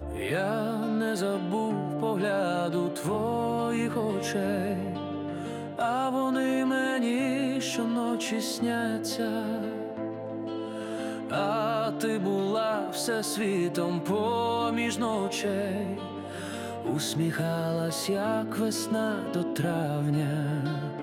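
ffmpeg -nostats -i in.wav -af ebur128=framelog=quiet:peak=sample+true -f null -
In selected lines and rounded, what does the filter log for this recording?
Integrated loudness:
  I:         -29.2 LUFS
  Threshold: -39.2 LUFS
Loudness range:
  LRA:         2.6 LU
  Threshold: -49.2 LUFS
  LRA low:   -30.7 LUFS
  LRA high:  -28.1 LUFS
Sample peak:
  Peak:      -15.4 dBFS
True peak:
  Peak:      -15.4 dBFS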